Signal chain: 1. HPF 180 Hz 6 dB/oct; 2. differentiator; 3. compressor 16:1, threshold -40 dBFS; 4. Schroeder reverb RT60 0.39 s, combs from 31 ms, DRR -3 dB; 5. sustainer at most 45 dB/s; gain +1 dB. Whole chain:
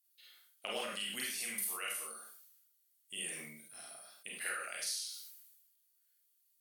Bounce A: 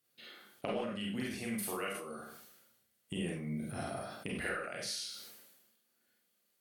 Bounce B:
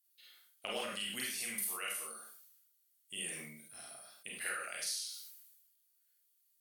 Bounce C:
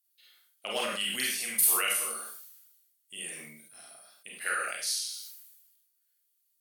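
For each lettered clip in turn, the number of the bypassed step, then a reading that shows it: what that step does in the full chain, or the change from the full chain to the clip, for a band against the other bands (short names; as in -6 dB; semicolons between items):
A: 2, 125 Hz band +18.5 dB; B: 1, 125 Hz band +3.0 dB; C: 3, mean gain reduction 5.5 dB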